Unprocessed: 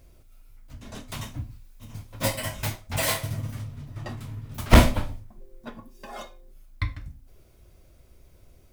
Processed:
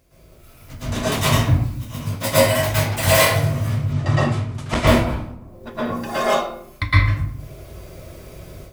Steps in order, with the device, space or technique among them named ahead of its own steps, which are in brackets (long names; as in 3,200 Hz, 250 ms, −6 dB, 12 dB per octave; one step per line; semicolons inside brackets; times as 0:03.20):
far laptop microphone (convolution reverb RT60 0.70 s, pre-delay 108 ms, DRR −10.5 dB; high-pass filter 130 Hz 6 dB per octave; automatic gain control gain up to 12 dB)
0:03.93–0:04.87: low-pass filter 9,000 Hz 24 dB per octave
level −1 dB